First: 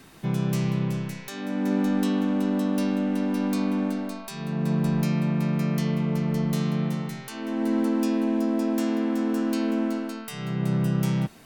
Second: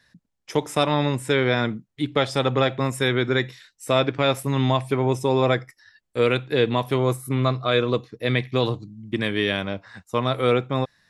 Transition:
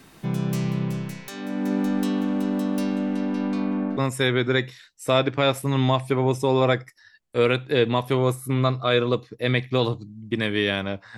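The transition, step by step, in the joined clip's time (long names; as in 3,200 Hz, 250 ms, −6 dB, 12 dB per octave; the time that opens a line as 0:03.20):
first
0:02.93–0:03.97: low-pass filter 11,000 Hz → 1,600 Hz
0:03.97: continue with second from 0:02.78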